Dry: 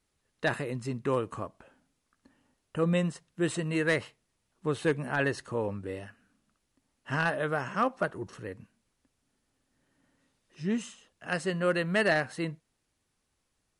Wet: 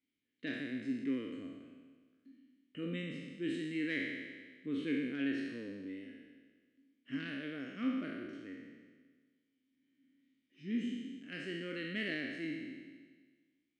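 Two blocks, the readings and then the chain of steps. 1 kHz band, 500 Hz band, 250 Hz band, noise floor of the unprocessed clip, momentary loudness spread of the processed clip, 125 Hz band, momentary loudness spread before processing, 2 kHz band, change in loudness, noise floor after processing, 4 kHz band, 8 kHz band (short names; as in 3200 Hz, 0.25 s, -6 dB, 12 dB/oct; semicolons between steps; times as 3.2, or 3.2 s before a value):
-23.0 dB, -15.0 dB, -3.5 dB, -79 dBFS, 14 LU, -15.0 dB, 15 LU, -10.0 dB, -9.0 dB, -82 dBFS, -6.0 dB, under -15 dB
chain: spectral trails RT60 1.53 s; vowel filter i; gain +1.5 dB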